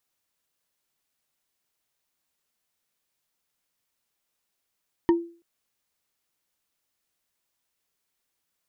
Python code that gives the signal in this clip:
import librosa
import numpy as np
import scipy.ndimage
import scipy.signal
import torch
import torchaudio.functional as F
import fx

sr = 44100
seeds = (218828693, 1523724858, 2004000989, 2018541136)

y = fx.strike_wood(sr, length_s=0.33, level_db=-13.0, body='bar', hz=339.0, decay_s=0.39, tilt_db=8, modes=5)